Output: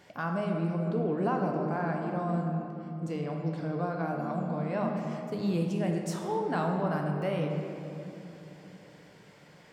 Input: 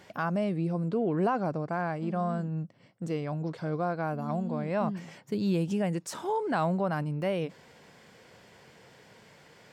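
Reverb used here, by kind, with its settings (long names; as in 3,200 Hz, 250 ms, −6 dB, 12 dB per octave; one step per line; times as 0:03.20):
rectangular room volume 150 cubic metres, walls hard, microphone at 0.38 metres
level −3.5 dB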